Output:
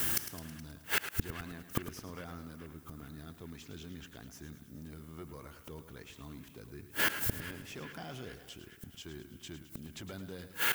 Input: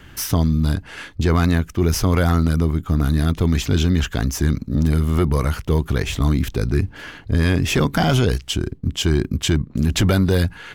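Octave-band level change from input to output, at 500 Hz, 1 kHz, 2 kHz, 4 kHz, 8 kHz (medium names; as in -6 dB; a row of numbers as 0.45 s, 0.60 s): -23.5 dB, -17.5 dB, -10.0 dB, -16.0 dB, -13.0 dB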